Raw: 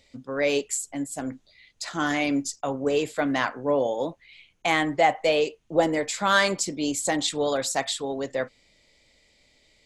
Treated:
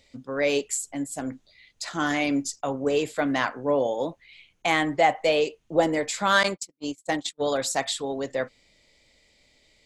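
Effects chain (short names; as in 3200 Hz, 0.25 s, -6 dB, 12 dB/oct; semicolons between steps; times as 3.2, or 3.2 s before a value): 6.43–7.44 gate -24 dBFS, range -51 dB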